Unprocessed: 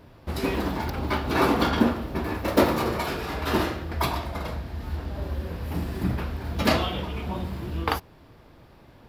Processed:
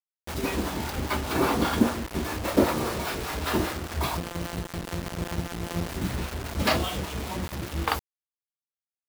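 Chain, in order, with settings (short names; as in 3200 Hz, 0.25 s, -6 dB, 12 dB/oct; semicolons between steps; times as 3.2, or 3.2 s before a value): 4.17–5.89 sample sorter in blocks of 256 samples; harmonic tremolo 5 Hz, depth 70%, crossover 550 Hz; bit-crush 6-bit; gain +1 dB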